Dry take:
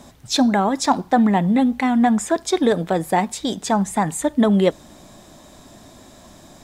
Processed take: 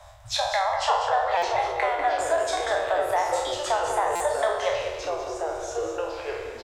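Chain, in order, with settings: spectral sustain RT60 0.67 s; Chebyshev band-stop 110–600 Hz, order 4; treble shelf 3.2 kHz -10.5 dB; compression 2:1, threshold -24 dBFS, peak gain reduction 7 dB; ever faster or slower copies 404 ms, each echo -4 st, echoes 3, each echo -6 dB; 0.57–1.21 s: distance through air 54 m; delay 196 ms -9 dB; Schroeder reverb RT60 1.2 s, combs from 32 ms, DRR 16 dB; buffer glitch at 1.37/4.15 s, samples 256, times 8

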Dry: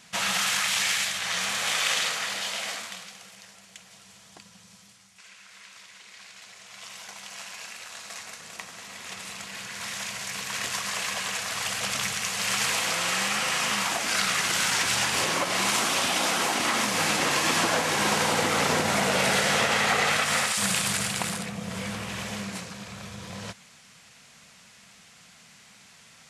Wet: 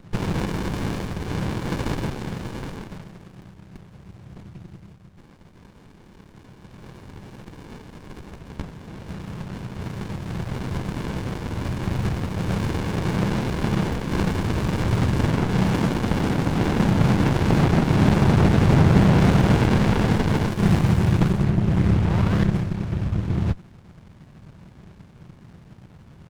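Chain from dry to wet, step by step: tone controls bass +14 dB, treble -14 dB; painted sound rise, 22.05–22.45 s, 840–2100 Hz -31 dBFS; harmony voices -7 st -4 dB, -3 st -2 dB; sliding maximum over 65 samples; trim +4.5 dB

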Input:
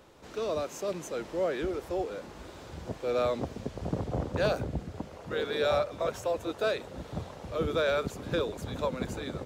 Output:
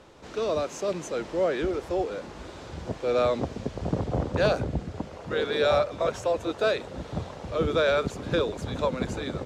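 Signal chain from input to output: low-pass 8.2 kHz 12 dB/octave; trim +4.5 dB

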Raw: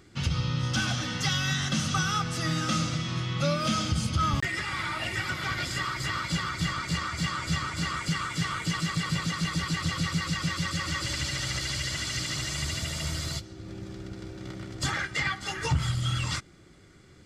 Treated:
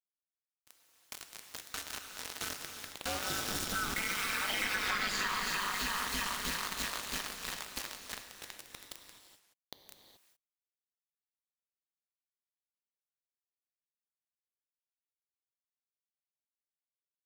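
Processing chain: Doppler pass-by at 5.00 s, 36 m/s, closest 7.1 m; level rider gain up to 16 dB; dynamic bell 150 Hz, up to -4 dB, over -43 dBFS, Q 2.5; bit crusher 5-bit; bass shelf 240 Hz -9.5 dB; gated-style reverb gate 450 ms flat, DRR 4.5 dB; compression 8:1, threshold -28 dBFS, peak gain reduction 15 dB; ring modulator 100 Hz

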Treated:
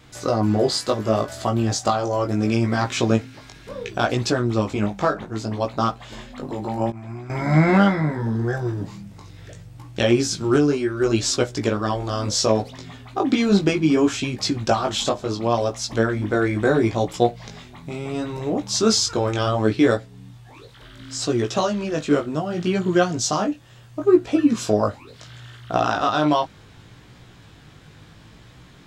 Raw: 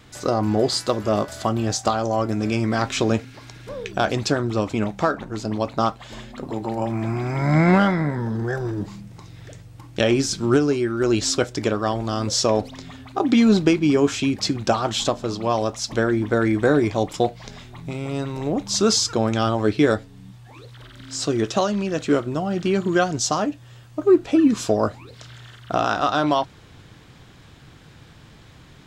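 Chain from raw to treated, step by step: 6.90–7.30 s: expander -15 dBFS; chorus 0.7 Hz, delay 16.5 ms, depth 3.7 ms; trim +3 dB

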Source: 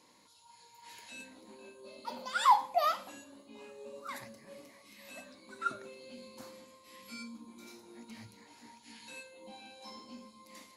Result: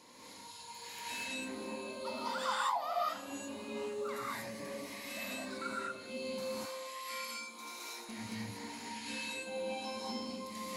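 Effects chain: 6.41–8.09 s: high-pass 670 Hz 12 dB/octave; compression 3:1, threshold -50 dBFS, peak gain reduction 22.5 dB; gated-style reverb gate 260 ms rising, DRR -7 dB; trim +4.5 dB

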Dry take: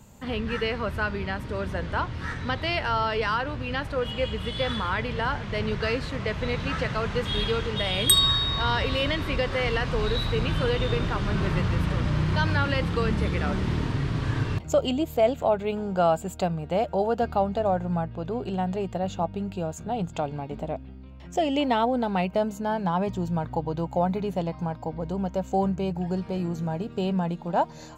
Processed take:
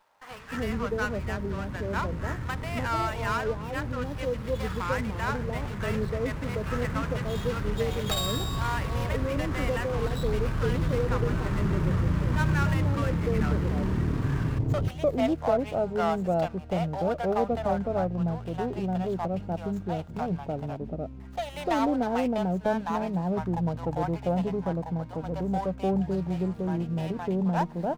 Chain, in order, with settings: median filter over 15 samples; bands offset in time highs, lows 300 ms, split 710 Hz; sliding maximum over 5 samples

